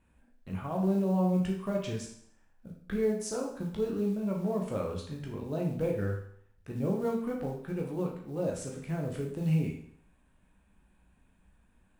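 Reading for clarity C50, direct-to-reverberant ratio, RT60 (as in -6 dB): 5.0 dB, -1.0 dB, 0.65 s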